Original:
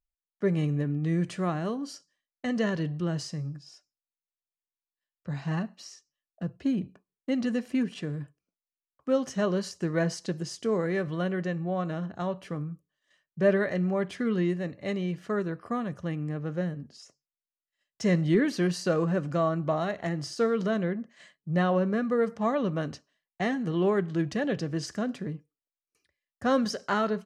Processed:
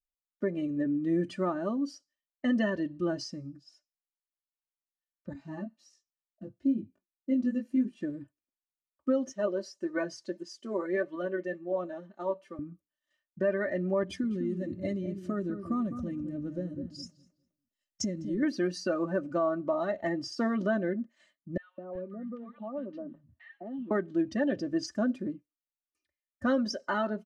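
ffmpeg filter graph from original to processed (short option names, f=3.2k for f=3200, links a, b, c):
-filter_complex "[0:a]asettb=1/sr,asplit=3[a][b][c];[a]atrim=end=5.334[d];[b]atrim=start=5.33:end=8.01,asetpts=PTS-STARTPTS,afade=t=in:d=0.004:c=qsin,afade=t=out:st=2.676:d=0.004:c=qsin,equalizer=f=1.7k:w=0.3:g=-4.5,flanger=delay=18:depth=2.2:speed=2.1[e];[c]atrim=start=8.006[f];[d][e]acrossfade=d=0.004:c1=hsin:c2=qsin[g];[g][f]acrossfade=d=0.004:c1=qsin:c2=hsin,asettb=1/sr,asplit=3[h][i][j];[h]atrim=end=9.324[k];[i]atrim=start=9.32:end=12.59,asetpts=PTS-STARTPTS,afade=t=in:d=0.004:c=qsin,afade=t=out:st=3.266:d=0.004:c=qsin,highpass=290,aecho=1:1:5.2:0.41,atrim=end_sample=144207,flanger=delay=1.8:depth=7:regen=75:speed=1.7:shape=triangular[l];[j]atrim=start=12.586[m];[k][l]acrossfade=d=0.004:c1=hsin:c2=qsin[n];[n][m]acrossfade=d=0.004:c1=qsin:c2=hsin,asettb=1/sr,asplit=3[o][p][q];[o]atrim=end=14.034[r];[p]atrim=start=14.03:end=18.43,asetpts=PTS-STARTPTS,afade=t=in:d=0.004:c=qsin,afade=t=out:st=4.396:d=0.004:c=qsin,bass=f=250:g=11,treble=f=4k:g=9,acompressor=threshold=-28dB:ratio=12:attack=3.2:release=140:knee=1:detection=peak,asplit=2[s][t];[t]adelay=205,lowpass=f=2.1k:p=1,volume=-8dB,asplit=2[u][v];[v]adelay=205,lowpass=f=2.1k:p=1,volume=0.35,asplit=2[w][x];[x]adelay=205,lowpass=f=2.1k:p=1,volume=0.35,asplit=2[y][z];[z]adelay=205,lowpass=f=2.1k:p=1,volume=0.35[aa];[s][u][w][y][aa]amix=inputs=5:normalize=0,atrim=end_sample=194040[ab];[q]atrim=start=18.426[ac];[r][ab]acrossfade=d=0.004:c1=hsin:c2=qsin[ad];[ad][ac]acrossfade=d=0.004:c1=qsin:c2=hsin,asettb=1/sr,asplit=3[ae][af][ag];[ae]atrim=end=21.574[ah];[af]atrim=start=21.57:end=23.91,asetpts=PTS-STARTPTS,afade=t=in:d=0.004:c=qsin,afade=t=out:st=2.336:d=0.004:c=qsin,lowpass=f=3.5k:w=0.5412,lowpass=f=3.5k:w=1.3066,acompressor=threshold=-38dB:ratio=4:attack=3.2:release=140:knee=1:detection=peak,acrossover=split=170|1300[ai][aj][ak];[aj]adelay=210[al];[ai]adelay=380[am];[am][al][ak]amix=inputs=3:normalize=0,atrim=end_sample=103194[an];[ag]atrim=start=23.906[ao];[ah][an]acrossfade=d=0.004:c1=hsin:c2=qsin[ap];[ap][ao]acrossfade=d=0.004:c1=qsin:c2=hsin,afftdn=nr=14:nf=-37,aecho=1:1:3.3:0.85,alimiter=limit=-19dB:level=0:latency=1:release=448"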